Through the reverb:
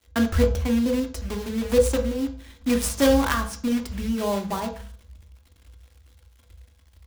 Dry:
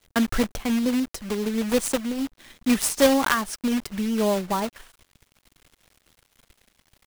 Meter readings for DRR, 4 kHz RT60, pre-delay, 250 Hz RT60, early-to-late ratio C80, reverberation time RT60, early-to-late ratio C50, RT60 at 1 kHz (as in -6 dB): 3.0 dB, 0.35 s, 3 ms, 0.60 s, 13.5 dB, 0.40 s, 10.5 dB, 0.40 s